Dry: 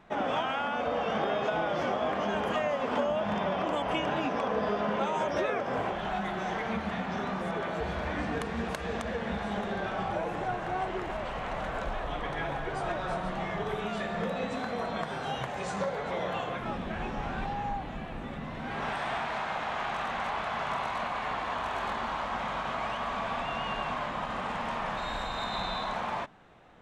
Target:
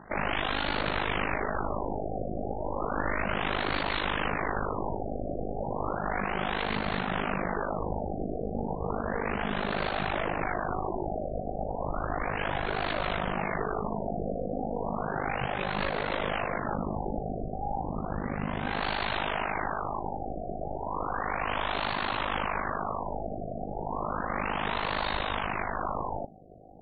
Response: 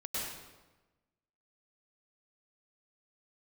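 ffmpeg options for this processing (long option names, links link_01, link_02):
-af "aeval=exprs='0.119*(cos(1*acos(clip(val(0)/0.119,-1,1)))-cos(1*PI/2))+0.0473*(cos(3*acos(clip(val(0)/0.119,-1,1)))-cos(3*PI/2))+0.0266*(cos(6*acos(clip(val(0)/0.119,-1,1)))-cos(6*PI/2))+0.0596*(cos(7*acos(clip(val(0)/0.119,-1,1)))-cos(7*PI/2))':channel_layout=same,tremolo=f=51:d=0.889,afftfilt=real='re*lt(b*sr/1024,760*pow(4600/760,0.5+0.5*sin(2*PI*0.33*pts/sr)))':imag='im*lt(b*sr/1024,760*pow(4600/760,0.5+0.5*sin(2*PI*0.33*pts/sr)))':win_size=1024:overlap=0.75"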